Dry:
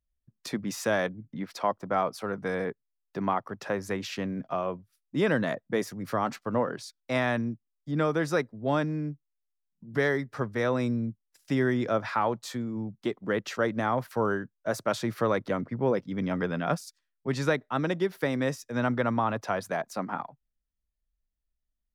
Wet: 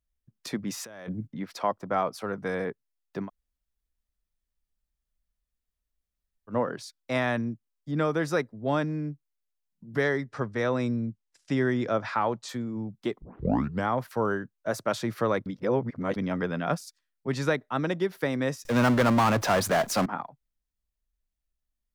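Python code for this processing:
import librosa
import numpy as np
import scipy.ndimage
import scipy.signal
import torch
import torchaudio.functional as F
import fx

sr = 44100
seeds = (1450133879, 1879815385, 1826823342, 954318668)

y = fx.over_compress(x, sr, threshold_db=-39.0, ratio=-1.0, at=(0.84, 1.26), fade=0.02)
y = fx.lowpass(y, sr, hz=8800.0, slope=24, at=(10.03, 12.49))
y = fx.power_curve(y, sr, exponent=0.5, at=(18.65, 20.06))
y = fx.edit(y, sr, fx.room_tone_fill(start_s=3.25, length_s=3.27, crossfade_s=0.1),
    fx.tape_start(start_s=13.22, length_s=0.66),
    fx.reverse_span(start_s=15.46, length_s=0.7), tone=tone)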